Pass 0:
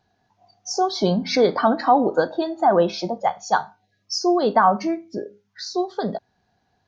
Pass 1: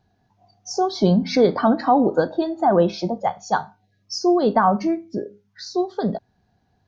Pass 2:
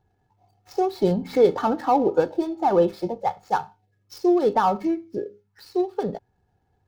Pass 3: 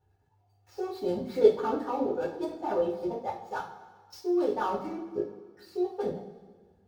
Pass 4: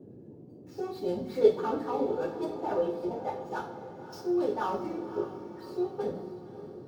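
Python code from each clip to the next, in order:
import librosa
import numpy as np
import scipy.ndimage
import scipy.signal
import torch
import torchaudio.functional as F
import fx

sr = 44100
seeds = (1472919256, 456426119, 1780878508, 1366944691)

y1 = fx.low_shelf(x, sr, hz=340.0, db=10.5)
y1 = y1 * 10.0 ** (-3.0 / 20.0)
y2 = scipy.ndimage.median_filter(y1, 15, mode='constant')
y2 = y2 + 0.51 * np.pad(y2, (int(2.3 * sr / 1000.0), 0))[:len(y2)]
y2 = y2 * 10.0 ** (-3.0 / 20.0)
y3 = fx.level_steps(y2, sr, step_db=14)
y3 = fx.transient(y3, sr, attack_db=-2, sustain_db=-6)
y3 = fx.rev_double_slope(y3, sr, seeds[0], early_s=0.36, late_s=1.7, knee_db=-17, drr_db=-9.0)
y3 = y3 * 10.0 ** (-8.5 / 20.0)
y4 = fx.dmg_noise_band(y3, sr, seeds[1], low_hz=99.0, high_hz=430.0, level_db=-48.0)
y4 = fx.echo_diffused(y4, sr, ms=565, feedback_pct=50, wet_db=-12)
y4 = y4 * 10.0 ** (-1.5 / 20.0)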